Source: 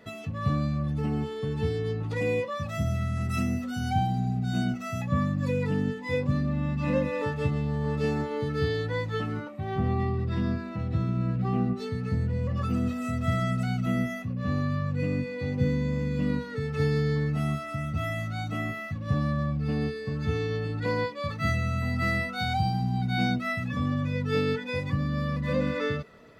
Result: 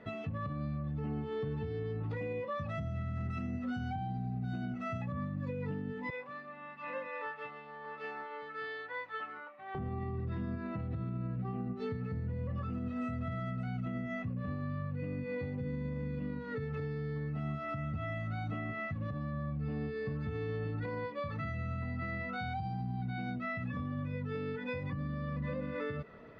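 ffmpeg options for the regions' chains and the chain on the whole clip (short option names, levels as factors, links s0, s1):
-filter_complex "[0:a]asettb=1/sr,asplit=3[s0][s1][s2];[s0]atrim=end=6.104[s3];[s1]atrim=start=6.1:end=9.75,asetpts=PTS-STARTPTS,afade=t=in:d=0.004:c=qsin,afade=t=out:st=3.646:d=0.004:c=qsin,highpass=1100,highshelf=f=3700:g=-12[s4];[s2]atrim=start=9.746[s5];[s3][s4]acrossfade=d=0.004:c1=hsin:c2=qsin[s6];[s6][s5]acrossfade=d=0.004:c1=qsin:c2=hsin,lowpass=2400,acompressor=threshold=0.0316:ratio=6,alimiter=level_in=1.88:limit=0.0631:level=0:latency=1:release=108,volume=0.531"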